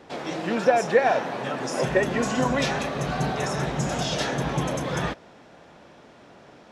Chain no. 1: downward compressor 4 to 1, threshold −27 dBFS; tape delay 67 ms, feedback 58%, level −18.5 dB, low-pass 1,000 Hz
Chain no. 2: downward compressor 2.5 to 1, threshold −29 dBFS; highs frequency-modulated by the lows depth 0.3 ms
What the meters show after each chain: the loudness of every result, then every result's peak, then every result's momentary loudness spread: −30.5, −31.0 LKFS; −16.5, −16.0 dBFS; 20, 21 LU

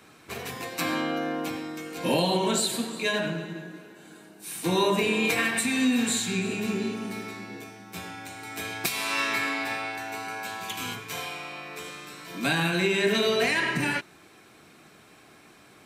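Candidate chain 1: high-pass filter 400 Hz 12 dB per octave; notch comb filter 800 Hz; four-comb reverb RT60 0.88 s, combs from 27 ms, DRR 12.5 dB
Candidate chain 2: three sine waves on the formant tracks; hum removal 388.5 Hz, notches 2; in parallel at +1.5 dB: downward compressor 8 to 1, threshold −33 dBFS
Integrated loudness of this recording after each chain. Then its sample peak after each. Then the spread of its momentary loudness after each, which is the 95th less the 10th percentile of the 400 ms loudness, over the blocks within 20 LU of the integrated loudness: −30.0, −25.0 LKFS; −14.0, −7.0 dBFS; 16, 16 LU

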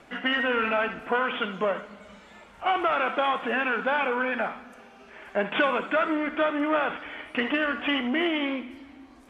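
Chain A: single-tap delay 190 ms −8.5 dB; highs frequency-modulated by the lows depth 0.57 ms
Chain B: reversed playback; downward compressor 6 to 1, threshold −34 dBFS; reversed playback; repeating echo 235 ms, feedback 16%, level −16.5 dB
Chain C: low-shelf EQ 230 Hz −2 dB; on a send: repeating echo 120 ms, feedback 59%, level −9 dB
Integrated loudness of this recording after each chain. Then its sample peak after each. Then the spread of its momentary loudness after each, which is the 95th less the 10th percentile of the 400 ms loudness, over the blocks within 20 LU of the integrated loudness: −26.0, −37.0, −26.0 LKFS; −11.5, −24.5, −11.0 dBFS; 9, 10, 14 LU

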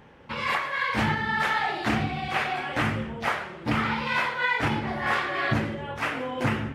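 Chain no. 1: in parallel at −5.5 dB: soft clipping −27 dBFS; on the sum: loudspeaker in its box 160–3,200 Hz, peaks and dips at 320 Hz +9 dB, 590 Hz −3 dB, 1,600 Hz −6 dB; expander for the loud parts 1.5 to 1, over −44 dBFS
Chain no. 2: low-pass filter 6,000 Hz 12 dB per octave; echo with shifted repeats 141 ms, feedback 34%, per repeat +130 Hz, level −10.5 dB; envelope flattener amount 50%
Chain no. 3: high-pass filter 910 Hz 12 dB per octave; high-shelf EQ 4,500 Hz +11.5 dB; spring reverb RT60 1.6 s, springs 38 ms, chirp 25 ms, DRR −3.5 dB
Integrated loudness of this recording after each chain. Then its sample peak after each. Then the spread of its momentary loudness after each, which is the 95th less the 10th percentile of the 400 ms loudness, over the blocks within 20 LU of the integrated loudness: −28.5, −24.0, −22.0 LKFS; −10.5, −10.5, −7.5 dBFS; 6, 3, 7 LU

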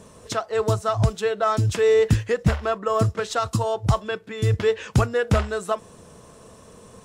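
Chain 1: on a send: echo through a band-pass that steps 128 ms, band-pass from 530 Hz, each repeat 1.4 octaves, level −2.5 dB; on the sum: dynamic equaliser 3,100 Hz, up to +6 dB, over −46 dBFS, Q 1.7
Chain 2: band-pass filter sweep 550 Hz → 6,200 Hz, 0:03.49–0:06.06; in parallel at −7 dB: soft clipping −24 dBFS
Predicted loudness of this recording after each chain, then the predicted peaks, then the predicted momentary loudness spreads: −22.0, −27.0 LKFS; −5.5, −13.5 dBFS; 9, 16 LU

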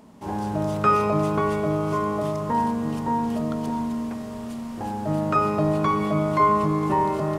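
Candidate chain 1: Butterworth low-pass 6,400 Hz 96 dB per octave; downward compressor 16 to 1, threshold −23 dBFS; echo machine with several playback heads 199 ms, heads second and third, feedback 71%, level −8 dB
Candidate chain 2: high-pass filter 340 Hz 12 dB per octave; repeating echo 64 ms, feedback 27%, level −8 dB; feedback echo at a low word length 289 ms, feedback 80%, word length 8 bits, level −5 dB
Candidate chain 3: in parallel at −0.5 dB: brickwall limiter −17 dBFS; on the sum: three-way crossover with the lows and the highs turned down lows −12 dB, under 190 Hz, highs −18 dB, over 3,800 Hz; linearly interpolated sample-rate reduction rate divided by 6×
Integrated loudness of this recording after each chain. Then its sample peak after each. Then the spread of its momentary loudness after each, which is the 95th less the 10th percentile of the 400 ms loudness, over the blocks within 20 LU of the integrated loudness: −26.5, −22.5, −20.5 LKFS; −13.0, −7.0, −6.5 dBFS; 4, 14, 10 LU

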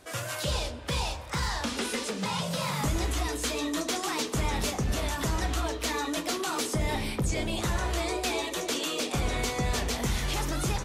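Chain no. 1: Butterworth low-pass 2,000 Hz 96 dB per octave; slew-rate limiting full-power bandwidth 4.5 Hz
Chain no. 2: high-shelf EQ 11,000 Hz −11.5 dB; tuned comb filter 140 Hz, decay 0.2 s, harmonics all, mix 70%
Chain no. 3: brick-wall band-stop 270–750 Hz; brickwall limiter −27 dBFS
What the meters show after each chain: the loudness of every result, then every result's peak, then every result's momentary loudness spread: −36.5, −37.0, −35.5 LKFS; −19.0, −23.5, −27.0 dBFS; 7, 2, 1 LU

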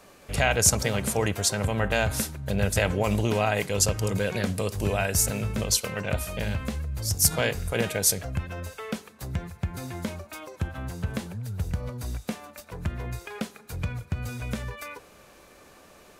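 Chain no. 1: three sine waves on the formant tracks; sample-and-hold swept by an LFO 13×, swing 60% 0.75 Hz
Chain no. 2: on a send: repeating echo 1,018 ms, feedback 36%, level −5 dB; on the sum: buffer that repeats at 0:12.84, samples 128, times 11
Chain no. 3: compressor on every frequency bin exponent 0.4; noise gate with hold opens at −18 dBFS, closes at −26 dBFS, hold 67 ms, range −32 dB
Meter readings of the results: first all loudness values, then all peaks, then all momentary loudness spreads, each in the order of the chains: −25.5, −26.0, −20.5 LKFS; −9.5, −4.0, −1.5 dBFS; 19, 13, 7 LU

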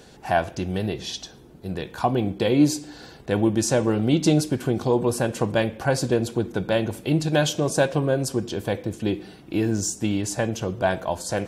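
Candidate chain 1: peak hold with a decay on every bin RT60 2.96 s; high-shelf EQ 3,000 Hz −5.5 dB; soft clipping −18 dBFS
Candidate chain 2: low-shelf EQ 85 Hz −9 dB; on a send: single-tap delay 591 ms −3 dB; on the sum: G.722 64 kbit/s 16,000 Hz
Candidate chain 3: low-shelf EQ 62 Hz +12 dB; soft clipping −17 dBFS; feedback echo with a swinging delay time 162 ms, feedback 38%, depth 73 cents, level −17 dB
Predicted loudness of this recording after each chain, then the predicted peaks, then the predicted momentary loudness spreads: −23.5, −23.5, −26.0 LKFS; −18.0, −5.5, −16.0 dBFS; 4, 7, 8 LU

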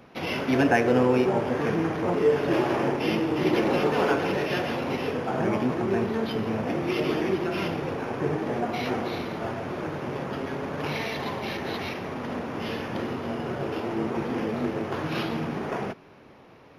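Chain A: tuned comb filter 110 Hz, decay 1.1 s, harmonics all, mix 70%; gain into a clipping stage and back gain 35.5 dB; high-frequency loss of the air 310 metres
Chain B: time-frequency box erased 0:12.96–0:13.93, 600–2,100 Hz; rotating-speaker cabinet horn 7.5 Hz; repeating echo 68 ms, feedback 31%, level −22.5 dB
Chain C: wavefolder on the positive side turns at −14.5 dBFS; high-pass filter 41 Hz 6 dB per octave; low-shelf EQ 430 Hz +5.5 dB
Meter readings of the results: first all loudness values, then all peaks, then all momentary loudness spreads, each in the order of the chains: −40.5, −29.0, −24.5 LKFS; −35.5, −9.5, −7.0 dBFS; 4, 9, 9 LU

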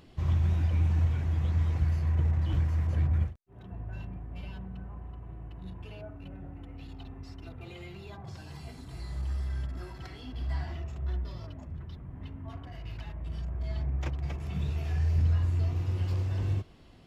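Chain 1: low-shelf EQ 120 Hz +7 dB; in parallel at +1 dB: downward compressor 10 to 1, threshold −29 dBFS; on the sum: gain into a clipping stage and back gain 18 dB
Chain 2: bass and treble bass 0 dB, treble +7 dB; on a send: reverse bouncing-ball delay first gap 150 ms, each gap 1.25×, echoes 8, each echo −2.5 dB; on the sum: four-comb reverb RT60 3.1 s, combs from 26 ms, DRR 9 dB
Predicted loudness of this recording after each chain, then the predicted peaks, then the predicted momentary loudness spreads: −26.5, −26.5 LKFS; −18.0, −11.5 dBFS; 13, 20 LU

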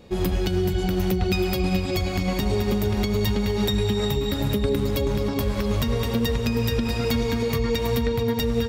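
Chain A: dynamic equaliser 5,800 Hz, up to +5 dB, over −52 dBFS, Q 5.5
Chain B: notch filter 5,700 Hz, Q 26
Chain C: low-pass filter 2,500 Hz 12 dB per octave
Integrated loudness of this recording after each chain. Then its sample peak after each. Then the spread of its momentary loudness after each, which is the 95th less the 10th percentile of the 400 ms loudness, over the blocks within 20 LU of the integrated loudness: −24.0, −24.0, −24.5 LKFS; −12.0, −12.0, −12.5 dBFS; 2, 2, 2 LU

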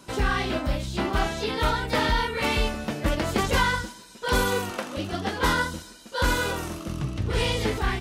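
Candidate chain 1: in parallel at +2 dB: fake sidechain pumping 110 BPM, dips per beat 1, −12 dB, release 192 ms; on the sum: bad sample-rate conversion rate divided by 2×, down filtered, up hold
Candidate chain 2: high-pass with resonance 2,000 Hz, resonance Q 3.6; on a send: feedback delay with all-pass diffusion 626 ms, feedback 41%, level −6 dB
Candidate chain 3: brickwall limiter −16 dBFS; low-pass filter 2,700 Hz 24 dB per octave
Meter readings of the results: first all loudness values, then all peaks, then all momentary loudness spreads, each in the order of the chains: −19.5, −23.5, −28.5 LKFS; −4.0, −9.0, −15.5 dBFS; 8, 8, 6 LU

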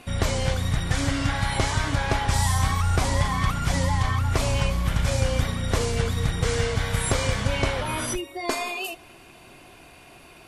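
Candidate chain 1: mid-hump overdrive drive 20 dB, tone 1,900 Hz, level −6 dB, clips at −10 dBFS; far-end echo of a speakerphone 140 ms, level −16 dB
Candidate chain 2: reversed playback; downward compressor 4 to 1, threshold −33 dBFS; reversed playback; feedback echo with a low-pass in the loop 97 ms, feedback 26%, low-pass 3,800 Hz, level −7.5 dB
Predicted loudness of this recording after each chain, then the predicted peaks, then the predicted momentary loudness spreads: −21.0, −35.0 LKFS; −10.5, −20.5 dBFS; 18, 12 LU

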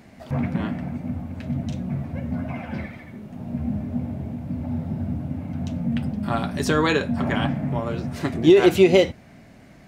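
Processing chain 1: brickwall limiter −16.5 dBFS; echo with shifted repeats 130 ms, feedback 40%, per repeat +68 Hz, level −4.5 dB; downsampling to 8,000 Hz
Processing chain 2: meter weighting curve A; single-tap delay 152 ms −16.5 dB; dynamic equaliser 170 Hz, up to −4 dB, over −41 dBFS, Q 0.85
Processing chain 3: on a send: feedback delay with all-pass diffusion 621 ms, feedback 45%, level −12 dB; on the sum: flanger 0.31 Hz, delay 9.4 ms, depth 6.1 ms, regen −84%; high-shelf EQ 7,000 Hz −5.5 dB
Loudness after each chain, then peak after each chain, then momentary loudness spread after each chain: −26.5, −26.5, −28.0 LKFS; −11.0, −5.5, −8.0 dBFS; 8, 21, 14 LU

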